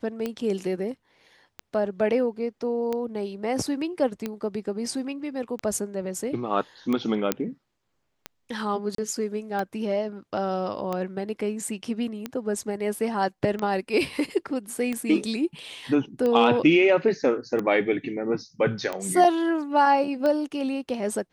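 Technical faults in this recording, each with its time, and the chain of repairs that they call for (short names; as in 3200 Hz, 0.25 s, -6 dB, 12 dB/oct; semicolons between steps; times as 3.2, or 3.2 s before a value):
tick 45 rpm -16 dBFS
7.32 pop -6 dBFS
8.95–8.98 gap 33 ms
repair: de-click; interpolate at 8.95, 33 ms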